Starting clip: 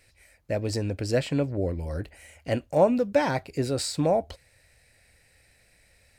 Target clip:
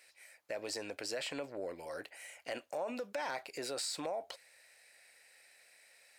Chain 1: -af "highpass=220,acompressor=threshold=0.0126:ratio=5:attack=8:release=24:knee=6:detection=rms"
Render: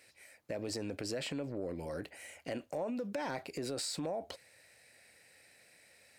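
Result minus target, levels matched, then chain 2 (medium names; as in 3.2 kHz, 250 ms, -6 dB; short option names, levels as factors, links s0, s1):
250 Hz band +6.0 dB
-af "highpass=650,acompressor=threshold=0.0126:ratio=5:attack=8:release=24:knee=6:detection=rms"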